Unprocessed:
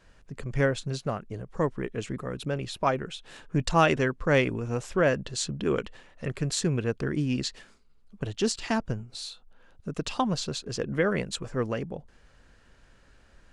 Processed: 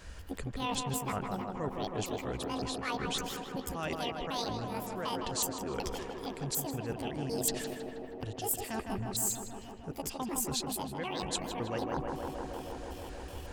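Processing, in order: pitch shift switched off and on +10.5 st, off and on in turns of 187 ms; peaking EQ 62 Hz +11 dB 0.75 oct; reverse; compression 12:1, threshold -39 dBFS, peak gain reduction 23.5 dB; reverse; treble shelf 5.2 kHz +9 dB; on a send: tape echo 157 ms, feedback 90%, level -3.5 dB, low-pass 2.1 kHz; on the sum: gain riding within 4 dB 2 s; trim +4 dB

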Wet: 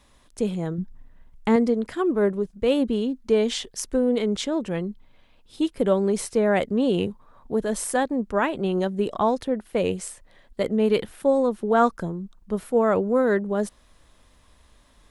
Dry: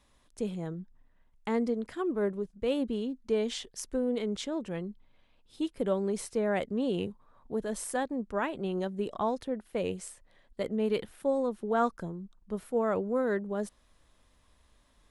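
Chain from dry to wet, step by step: 0.78–1.56 s: bass shelf 280 Hz +7.5 dB; trim +8.5 dB

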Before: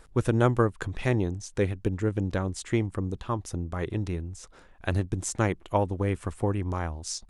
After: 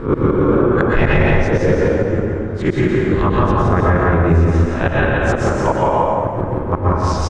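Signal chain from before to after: reverse spectral sustain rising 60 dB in 0.36 s; low-pass 1.9 kHz 12 dB/octave; inverted gate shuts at -20 dBFS, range -30 dB; delay 170 ms -3 dB; reverberation RT60 2.0 s, pre-delay 107 ms, DRR -4.5 dB; loudness maximiser +22.5 dB; 0.48–1.42 s: level flattener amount 70%; trim -4 dB

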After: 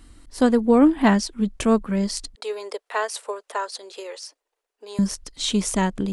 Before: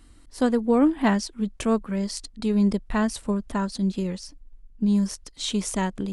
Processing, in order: 2.35–4.99 s: elliptic high-pass 440 Hz, stop band 60 dB; trim +4 dB

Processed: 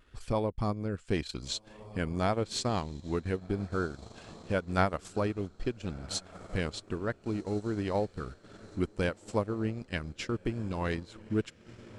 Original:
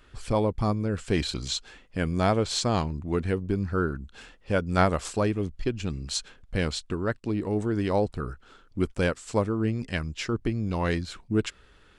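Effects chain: echo that smears into a reverb 1479 ms, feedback 46%, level -15.5 dB; vibrato 0.88 Hz 24 cents; transient shaper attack +2 dB, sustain -10 dB; trim -6 dB

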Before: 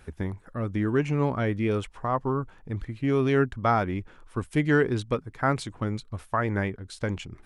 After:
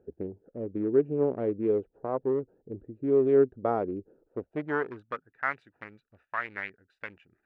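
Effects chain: local Wiener filter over 41 samples; band-pass sweep 430 Hz -> 2 kHz, 4.24–5.38 s; trim +5 dB

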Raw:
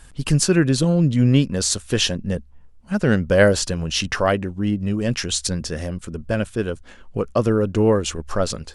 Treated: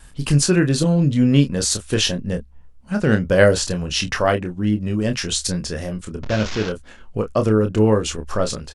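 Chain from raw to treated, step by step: 6.23–6.69 s: one-bit delta coder 32 kbps, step -21 dBFS; wow and flutter 25 cents; doubling 28 ms -7 dB

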